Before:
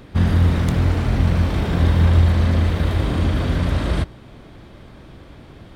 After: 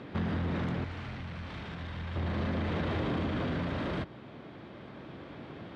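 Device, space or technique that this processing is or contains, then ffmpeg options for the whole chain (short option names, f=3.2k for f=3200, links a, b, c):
AM radio: -filter_complex "[0:a]highpass=150,lowpass=3.3k,acompressor=threshold=-26dB:ratio=6,asoftclip=type=tanh:threshold=-24.5dB,tremolo=f=0.35:d=0.28,asettb=1/sr,asplit=3[a][b][c];[a]atrim=end=0.844[d];[b]atrim=start=0.84:end=2.16,asetpts=PTS-STARTPTS,afade=t=in:d=0.004:c=qsin,afade=t=out:st=1.316:d=0.004:c=qsin,equalizer=f=360:t=o:w=3:g=-11.5[e];[c]atrim=start=2.156[f];[d][e]acrossfade=d=0.004:c1=hsin:c2=qsin[g];[g][f]acrossfade=d=0.004:c1=qsin:c2=hsin"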